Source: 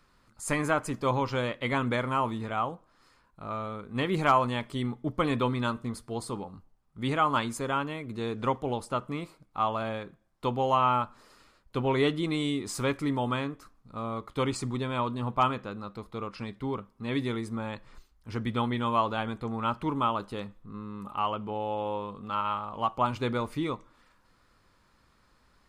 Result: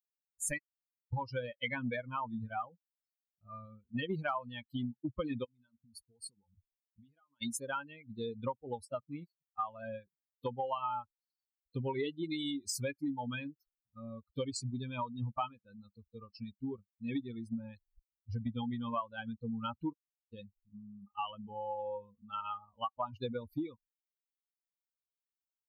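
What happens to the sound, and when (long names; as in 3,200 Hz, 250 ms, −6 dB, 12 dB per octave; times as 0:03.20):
0:00.58–0:01.13: fill with room tone
0:05.44–0:07.42: downward compressor 20 to 1, threshold −38 dBFS
0:19.92–0:20.33: gate with flip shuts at −25 dBFS, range −42 dB
whole clip: spectral dynamics exaggerated over time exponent 3; low-shelf EQ 63 Hz −9 dB; downward compressor 6 to 1, threshold −46 dBFS; level +11.5 dB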